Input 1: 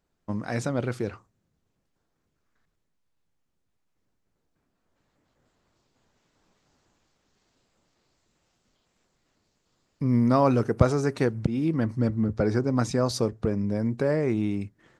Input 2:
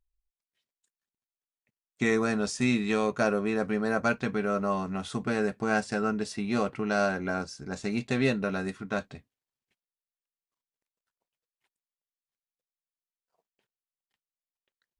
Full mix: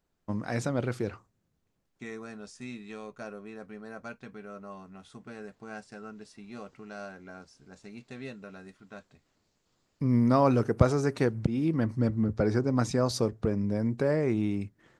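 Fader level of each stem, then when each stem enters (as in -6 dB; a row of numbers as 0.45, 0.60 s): -2.0, -15.5 dB; 0.00, 0.00 s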